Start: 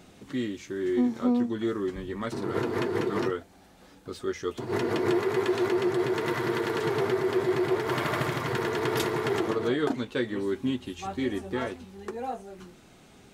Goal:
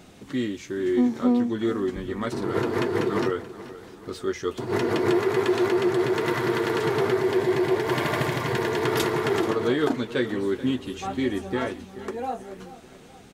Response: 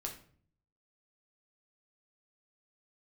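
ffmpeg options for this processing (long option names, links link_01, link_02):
-filter_complex "[0:a]asettb=1/sr,asplit=3[link_01][link_02][link_03];[link_01]atrim=end=7.214[link_04];[link_02]atrim=start=7.21:end=8.84,asetpts=PTS-STARTPTS,afade=type=in:duration=0.004:curve=qsin,afade=type=out:start_time=1.626:duration=0.004:curve=qsin,bandreject=frequency=1300:width=6.2[link_05];[link_03]atrim=start=8.836[link_06];[link_04][link_05]acrossfade=duration=0.004:curve1=hsin:curve2=qsin[link_07];[link_07][link_06]acrossfade=duration=0.004:curve1=qsin:curve2=hsin,aecho=1:1:432|864|1296|1728:0.158|0.0792|0.0396|0.0198,volume=3.5dB"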